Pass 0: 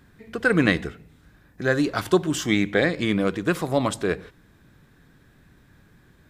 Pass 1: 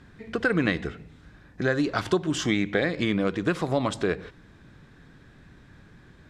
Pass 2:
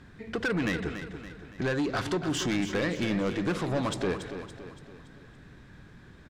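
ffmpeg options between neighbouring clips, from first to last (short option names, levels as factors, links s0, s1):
-af "lowpass=6300,acompressor=threshold=0.0447:ratio=2.5,volume=1.5"
-filter_complex "[0:a]asoftclip=type=tanh:threshold=0.0668,asplit=2[s0][s1];[s1]aecho=0:1:283|566|849|1132|1415:0.316|0.152|0.0729|0.035|0.0168[s2];[s0][s2]amix=inputs=2:normalize=0"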